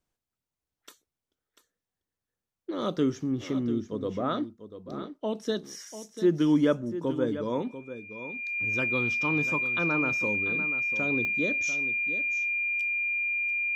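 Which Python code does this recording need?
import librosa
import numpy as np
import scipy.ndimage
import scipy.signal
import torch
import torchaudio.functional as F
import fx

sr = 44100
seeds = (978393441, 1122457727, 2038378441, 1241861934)

y = fx.fix_declick_ar(x, sr, threshold=10.0)
y = fx.notch(y, sr, hz=2400.0, q=30.0)
y = fx.fix_echo_inverse(y, sr, delay_ms=692, level_db=-12.0)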